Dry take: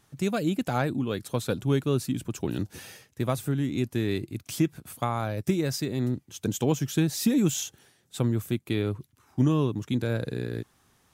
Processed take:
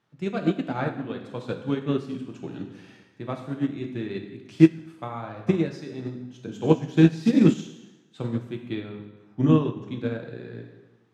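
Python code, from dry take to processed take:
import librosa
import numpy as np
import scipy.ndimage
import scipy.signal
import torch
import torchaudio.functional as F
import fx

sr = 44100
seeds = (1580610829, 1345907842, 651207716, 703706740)

y = fx.bandpass_edges(x, sr, low_hz=130.0, high_hz=3400.0)
y = fx.rev_plate(y, sr, seeds[0], rt60_s=1.2, hf_ratio=0.85, predelay_ms=0, drr_db=1.0)
y = fx.upward_expand(y, sr, threshold_db=-27.0, expansion=2.5)
y = F.gain(torch.from_numpy(y), 8.5).numpy()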